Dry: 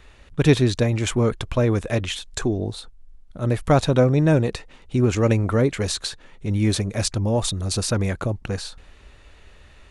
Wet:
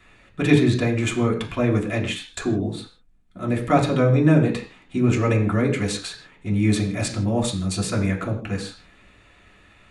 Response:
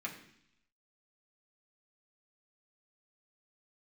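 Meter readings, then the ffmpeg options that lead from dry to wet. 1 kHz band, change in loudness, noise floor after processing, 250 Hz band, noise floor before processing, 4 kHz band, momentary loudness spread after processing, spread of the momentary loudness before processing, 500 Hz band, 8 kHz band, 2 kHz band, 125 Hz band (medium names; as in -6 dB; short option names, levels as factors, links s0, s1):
+1.0 dB, 0.0 dB, -54 dBFS, +2.0 dB, -49 dBFS, -3.0 dB, 13 LU, 12 LU, -2.0 dB, -3.5 dB, +2.0 dB, -1.0 dB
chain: -filter_complex "[1:a]atrim=start_sample=2205,afade=t=out:st=0.22:d=0.01,atrim=end_sample=10143[s0];[0:a][s0]afir=irnorm=-1:irlink=0"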